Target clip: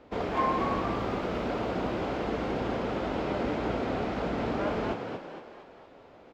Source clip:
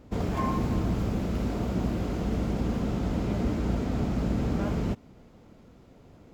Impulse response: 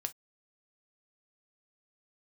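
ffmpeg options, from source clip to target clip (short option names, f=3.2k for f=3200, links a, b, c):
-filter_complex "[0:a]acrossover=split=340 4400:gain=0.158 1 0.1[a][b][c];[a][b][c]amix=inputs=3:normalize=0,asplit=7[d][e][f][g][h][i][j];[e]adelay=230,afreqshift=57,volume=-5.5dB[k];[f]adelay=460,afreqshift=114,volume=-11.7dB[l];[g]adelay=690,afreqshift=171,volume=-17.9dB[m];[h]adelay=920,afreqshift=228,volume=-24.1dB[n];[i]adelay=1150,afreqshift=285,volume=-30.3dB[o];[j]adelay=1380,afreqshift=342,volume=-36.5dB[p];[d][k][l][m][n][o][p]amix=inputs=7:normalize=0,volume=4.5dB"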